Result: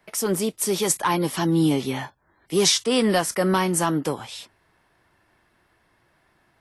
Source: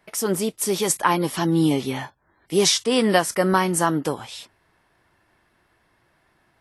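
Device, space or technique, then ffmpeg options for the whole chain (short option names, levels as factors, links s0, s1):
one-band saturation: -filter_complex "[0:a]acrossover=split=240|3000[s0][s1][s2];[s1]asoftclip=type=tanh:threshold=0.188[s3];[s0][s3][s2]amix=inputs=3:normalize=0"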